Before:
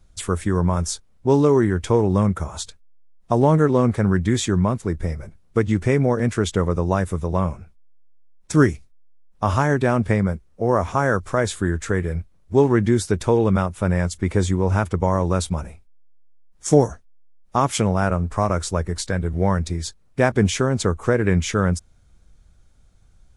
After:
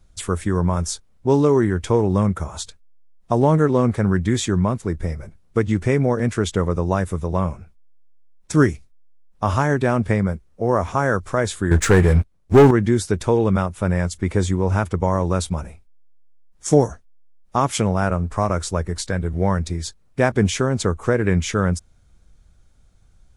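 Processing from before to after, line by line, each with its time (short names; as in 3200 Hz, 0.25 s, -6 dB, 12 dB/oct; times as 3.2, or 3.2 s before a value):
11.71–12.71 sample leveller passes 3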